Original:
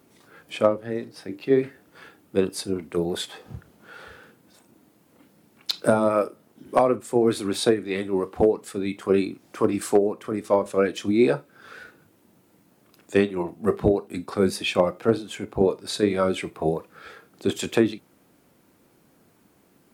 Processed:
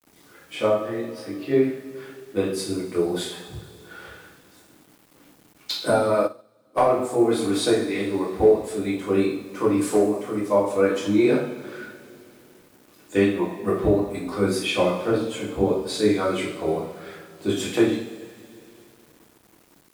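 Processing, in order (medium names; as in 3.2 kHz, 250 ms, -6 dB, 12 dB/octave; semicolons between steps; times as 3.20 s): two-slope reverb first 0.58 s, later 3 s, from -18 dB, DRR -6.5 dB; bit crusher 8-bit; 6.22–6.78 s: upward expansion 2.5:1, over -28 dBFS; trim -6 dB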